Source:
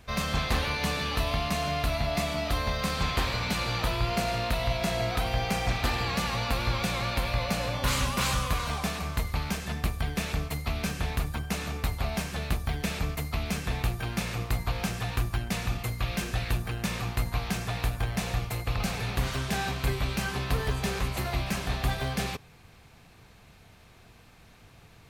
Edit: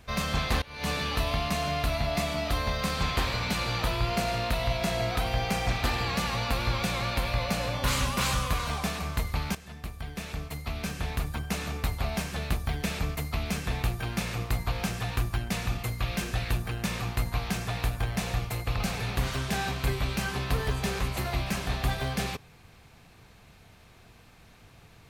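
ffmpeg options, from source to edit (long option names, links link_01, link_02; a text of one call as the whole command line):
ffmpeg -i in.wav -filter_complex "[0:a]asplit=3[link_01][link_02][link_03];[link_01]atrim=end=0.62,asetpts=PTS-STARTPTS,afade=type=out:start_time=0.616:duration=0.004:curve=hsin:silence=0.0891251[link_04];[link_02]atrim=start=0.62:end=9.55,asetpts=PTS-STARTPTS,afade=type=in:duration=0.27:curve=qua:silence=0.0891251,afade=type=out:start_time=8.926:duration=0.004:curve=hsin:silence=0.223872[link_05];[link_03]atrim=start=9.55,asetpts=PTS-STARTPTS,afade=type=in:duration=1.97:silence=0.223872[link_06];[link_04][link_05][link_06]concat=n=3:v=0:a=1" out.wav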